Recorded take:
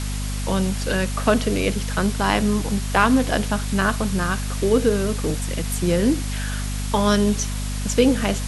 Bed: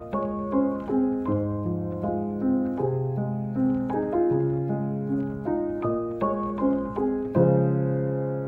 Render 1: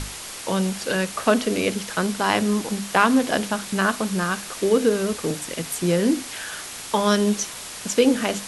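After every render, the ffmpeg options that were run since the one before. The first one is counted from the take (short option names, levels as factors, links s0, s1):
-af "bandreject=f=50:t=h:w=6,bandreject=f=100:t=h:w=6,bandreject=f=150:t=h:w=6,bandreject=f=200:t=h:w=6,bandreject=f=250:t=h:w=6,bandreject=f=300:t=h:w=6"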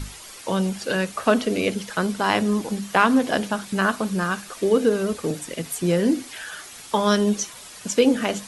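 -af "afftdn=nr=9:nf=-36"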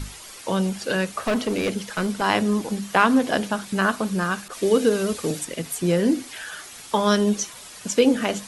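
-filter_complex "[0:a]asettb=1/sr,asplit=3[s0][s1][s2];[s0]atrim=end=1.194[s3];[s1]atrim=start=1.19:end=2.22,asetpts=PTS-STARTPTS,afade=t=in:d=0.004:c=qsin,afade=t=out:st=1.026:d=0.004:c=qsin,asoftclip=type=hard:threshold=0.119[s4];[s2]atrim=start=2.216[s5];[s3][s4]acrossfade=d=0.004:c1=hsin:c2=qsin[s6];[s6][s5]acrossfade=d=0.004:c1=qsin:c2=hsin,asettb=1/sr,asplit=3[s7][s8][s9];[s7]atrim=end=4.484[s10];[s8]atrim=start=4.48:end=5.45,asetpts=PTS-STARTPTS,afade=t=in:d=0.004:c=qsin,afade=t=out:st=0.966:d=0.004:c=qsin,adynamicequalizer=threshold=0.00891:dfrequency=2200:dqfactor=0.7:tfrequency=2200:tqfactor=0.7:attack=5:release=100:ratio=0.375:range=2.5:mode=boostabove:tftype=highshelf[s11];[s9]atrim=start=5.446[s12];[s10][s11]acrossfade=d=0.004:c1=hsin:c2=qsin[s13];[s13][s12]acrossfade=d=0.004:c1=qsin:c2=hsin"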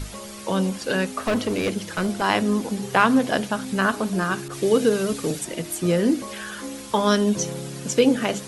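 -filter_complex "[1:a]volume=0.266[s0];[0:a][s0]amix=inputs=2:normalize=0"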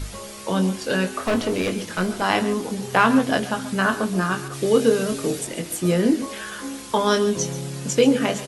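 -filter_complex "[0:a]asplit=2[s0][s1];[s1]adelay=22,volume=0.447[s2];[s0][s2]amix=inputs=2:normalize=0,aecho=1:1:132|140:0.133|0.15"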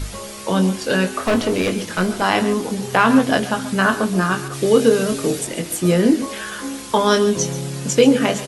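-af "volume=1.58,alimiter=limit=0.794:level=0:latency=1"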